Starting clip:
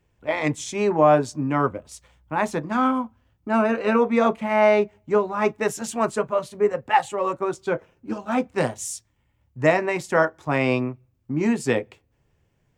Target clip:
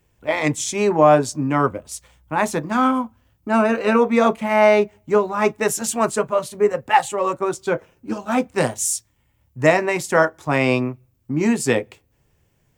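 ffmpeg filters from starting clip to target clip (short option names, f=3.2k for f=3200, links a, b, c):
-af "highshelf=f=6.8k:g=11.5,volume=3dB"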